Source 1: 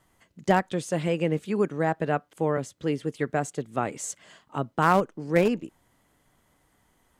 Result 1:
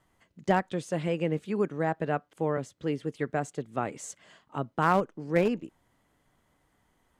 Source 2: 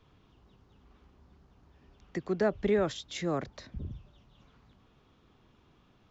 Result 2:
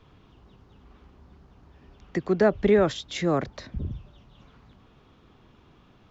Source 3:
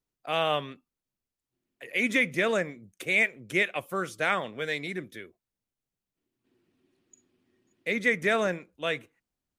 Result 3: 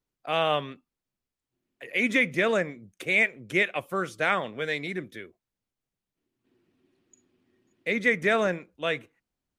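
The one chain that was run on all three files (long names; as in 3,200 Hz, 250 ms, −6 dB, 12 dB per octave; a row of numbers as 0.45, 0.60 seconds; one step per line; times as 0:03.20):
high-shelf EQ 6,300 Hz −7 dB
normalise the peak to −9 dBFS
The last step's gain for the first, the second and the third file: −3.0, +7.5, +2.0 decibels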